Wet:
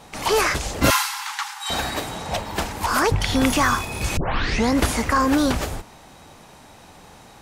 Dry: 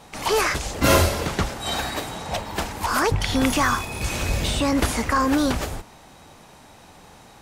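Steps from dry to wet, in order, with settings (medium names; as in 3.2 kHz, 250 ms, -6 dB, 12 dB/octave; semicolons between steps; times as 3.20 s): 0.90–1.70 s: Chebyshev high-pass 790 Hz, order 10; 4.17 s: tape start 0.57 s; trim +1.5 dB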